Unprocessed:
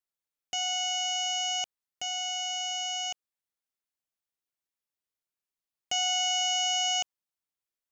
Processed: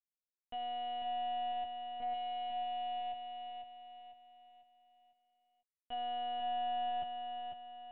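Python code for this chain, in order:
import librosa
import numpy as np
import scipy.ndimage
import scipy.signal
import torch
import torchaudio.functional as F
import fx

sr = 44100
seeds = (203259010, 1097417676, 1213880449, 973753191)

y = fx.wiener(x, sr, points=9)
y = fx.peak_eq(y, sr, hz=1800.0, db=-11.0, octaves=2.8)
y = fx.leveller(y, sr, passes=3)
y = fx.lpc_vocoder(y, sr, seeds[0], excitation='pitch_kept', order=8)
y = fx.air_absorb(y, sr, metres=350.0)
y = fx.echo_feedback(y, sr, ms=498, feedback_pct=41, wet_db=-5.5)
y = y * 10.0 ** (-5.0 / 20.0)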